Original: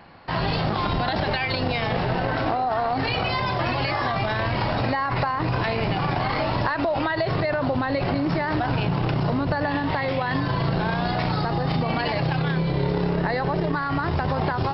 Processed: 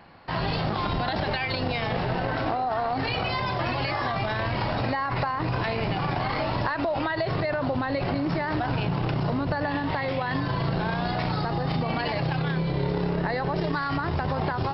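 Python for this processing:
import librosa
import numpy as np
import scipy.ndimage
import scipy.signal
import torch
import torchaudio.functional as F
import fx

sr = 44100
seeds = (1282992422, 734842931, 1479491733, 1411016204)

y = fx.high_shelf(x, sr, hz=4000.0, db=12.0, at=(13.56, 13.97))
y = y * librosa.db_to_amplitude(-3.0)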